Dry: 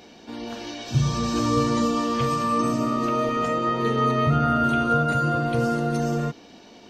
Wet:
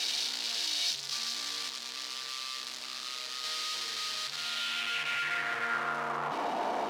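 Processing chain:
sign of each sample alone
0:01.69–0:03.44: amplitude modulation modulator 130 Hz, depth 60%
band-pass filter sweep 4,400 Hz → 830 Hz, 0:04.32–0:06.52

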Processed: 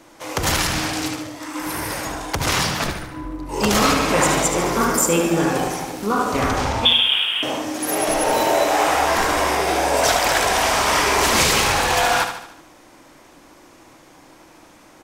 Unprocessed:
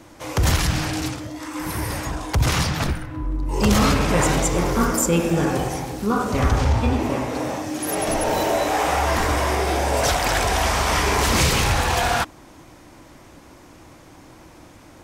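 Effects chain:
0:06.85–0:07.43: voice inversion scrambler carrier 3,500 Hz
low-shelf EQ 320 Hz −3 dB
in parallel at −6 dB: dead-zone distortion −34.5 dBFS
on the sum: parametric band 69 Hz −10 dB 2.1 octaves
mains-hum notches 60/120/180/240 Hz
on a send: repeating echo 74 ms, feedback 50%, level −8 dB

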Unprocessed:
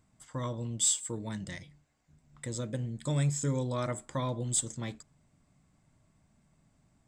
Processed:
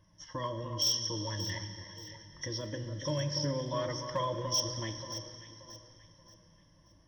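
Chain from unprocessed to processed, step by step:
hearing-aid frequency compression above 2,800 Hz 1.5 to 1
EQ curve with evenly spaced ripples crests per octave 1.2, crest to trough 14 dB
in parallel at +3 dB: downward compressor 5 to 1, threshold −39 dBFS, peak gain reduction 18.5 dB
on the sum: flanger 0.94 Hz, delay 1.8 ms, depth 1.2 ms, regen −48%
four-comb reverb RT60 2.8 s, combs from 32 ms, DRR 8.5 dB
gain into a clipping stage and back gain 22 dB
on a send: delay that swaps between a low-pass and a high-pass 290 ms, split 1,600 Hz, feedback 60%, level −7.5 dB
on the sum: level −2.5 dB

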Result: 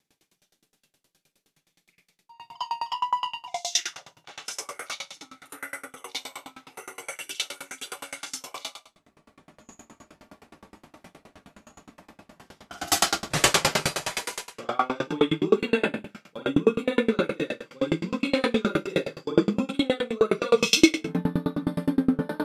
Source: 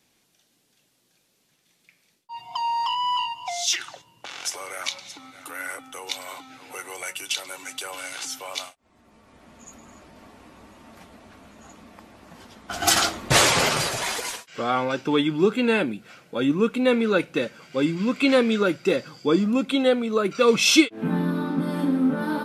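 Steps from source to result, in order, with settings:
convolution reverb RT60 0.50 s, pre-delay 39 ms, DRR −9.5 dB
tremolo with a ramp in dB decaying 9.6 Hz, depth 30 dB
level −5 dB

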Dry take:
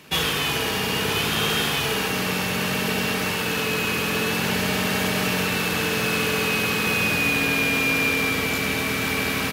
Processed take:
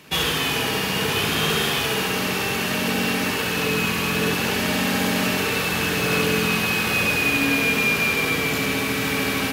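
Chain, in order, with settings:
flutter between parallel walls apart 11.7 metres, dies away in 0.54 s
on a send at −12.5 dB: convolution reverb RT60 0.75 s, pre-delay 46 ms

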